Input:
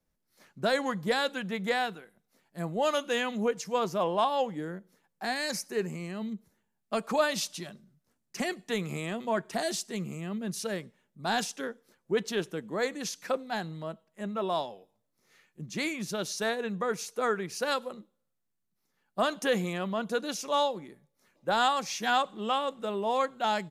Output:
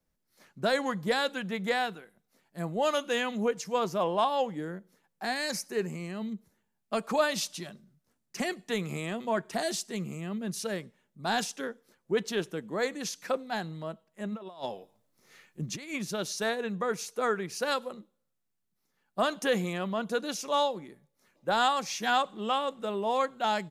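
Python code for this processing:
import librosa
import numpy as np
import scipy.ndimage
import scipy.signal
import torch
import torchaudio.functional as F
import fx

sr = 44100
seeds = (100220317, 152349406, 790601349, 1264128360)

y = fx.over_compress(x, sr, threshold_db=-37.0, ratio=-0.5, at=(14.31, 15.97), fade=0.02)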